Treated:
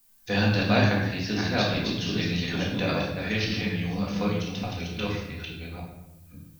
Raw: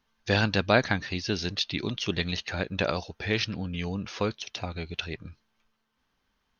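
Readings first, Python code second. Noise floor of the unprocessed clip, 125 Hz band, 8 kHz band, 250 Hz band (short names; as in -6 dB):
-76 dBFS, +4.5 dB, n/a, +5.5 dB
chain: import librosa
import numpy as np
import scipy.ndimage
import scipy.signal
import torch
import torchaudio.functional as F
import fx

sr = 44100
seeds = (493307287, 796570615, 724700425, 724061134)

y = fx.reverse_delay(x, sr, ms=580, wet_db=-3)
y = fx.dmg_noise_colour(y, sr, seeds[0], colour='violet', level_db=-58.0)
y = fx.room_shoebox(y, sr, seeds[1], volume_m3=350.0, walls='mixed', distance_m=1.9)
y = F.gain(torch.from_numpy(y), -6.0).numpy()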